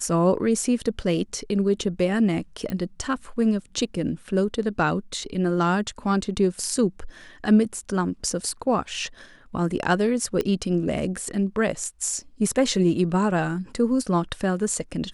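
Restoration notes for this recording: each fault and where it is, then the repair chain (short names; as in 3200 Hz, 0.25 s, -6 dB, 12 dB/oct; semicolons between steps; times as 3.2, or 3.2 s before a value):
2.7 pop -17 dBFS
10.41 pop -13 dBFS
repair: de-click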